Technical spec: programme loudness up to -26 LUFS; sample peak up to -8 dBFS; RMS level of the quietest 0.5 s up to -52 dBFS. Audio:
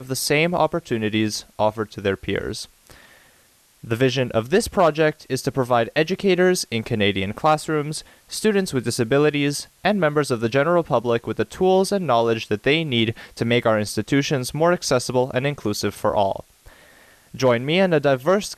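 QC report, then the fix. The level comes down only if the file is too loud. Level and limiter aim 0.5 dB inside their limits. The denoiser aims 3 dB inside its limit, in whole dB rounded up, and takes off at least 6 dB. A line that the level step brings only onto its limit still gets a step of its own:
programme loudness -21.0 LUFS: fail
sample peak -4.5 dBFS: fail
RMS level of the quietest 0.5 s -57 dBFS: pass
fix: trim -5.5 dB

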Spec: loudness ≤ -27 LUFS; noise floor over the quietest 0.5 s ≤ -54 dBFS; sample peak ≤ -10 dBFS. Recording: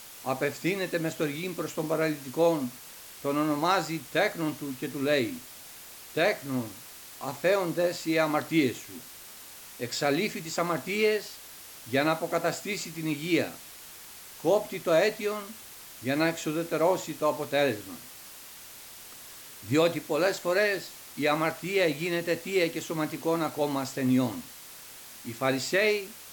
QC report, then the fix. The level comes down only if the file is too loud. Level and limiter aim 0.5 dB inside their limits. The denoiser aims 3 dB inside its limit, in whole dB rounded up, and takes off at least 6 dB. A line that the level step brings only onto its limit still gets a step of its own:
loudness -28.5 LUFS: pass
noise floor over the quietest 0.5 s -47 dBFS: fail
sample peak -12.5 dBFS: pass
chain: noise reduction 10 dB, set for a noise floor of -47 dBFS

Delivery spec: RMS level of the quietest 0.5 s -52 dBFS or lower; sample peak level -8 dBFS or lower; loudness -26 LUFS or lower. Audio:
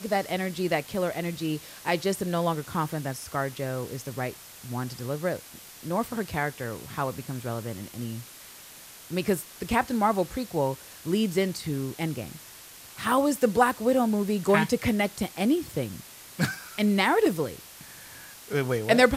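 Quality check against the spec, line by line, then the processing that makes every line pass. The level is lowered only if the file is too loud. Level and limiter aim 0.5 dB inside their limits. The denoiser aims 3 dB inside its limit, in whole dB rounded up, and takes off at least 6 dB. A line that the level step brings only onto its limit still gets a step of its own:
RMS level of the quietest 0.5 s -47 dBFS: fail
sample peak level -5.5 dBFS: fail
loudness -28.0 LUFS: pass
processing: noise reduction 8 dB, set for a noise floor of -47 dBFS; peak limiter -8.5 dBFS

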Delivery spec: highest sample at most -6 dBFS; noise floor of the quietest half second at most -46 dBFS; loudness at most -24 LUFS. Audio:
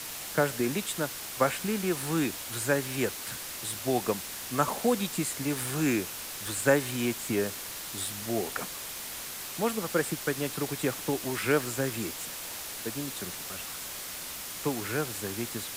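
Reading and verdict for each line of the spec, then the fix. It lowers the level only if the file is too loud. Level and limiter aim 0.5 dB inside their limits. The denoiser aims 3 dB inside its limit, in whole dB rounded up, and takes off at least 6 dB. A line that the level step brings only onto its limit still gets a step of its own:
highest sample -10.0 dBFS: pass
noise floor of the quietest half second -39 dBFS: fail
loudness -30.5 LUFS: pass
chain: noise reduction 10 dB, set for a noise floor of -39 dBFS

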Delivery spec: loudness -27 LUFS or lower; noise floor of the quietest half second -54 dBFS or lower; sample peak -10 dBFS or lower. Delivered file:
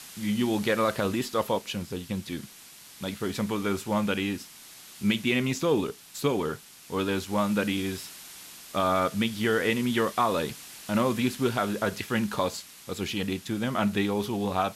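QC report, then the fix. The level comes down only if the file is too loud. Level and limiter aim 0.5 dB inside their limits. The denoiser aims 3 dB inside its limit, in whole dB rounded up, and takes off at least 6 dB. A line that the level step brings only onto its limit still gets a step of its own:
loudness -28.0 LUFS: pass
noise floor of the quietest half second -49 dBFS: fail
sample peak -13.0 dBFS: pass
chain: noise reduction 8 dB, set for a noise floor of -49 dBFS

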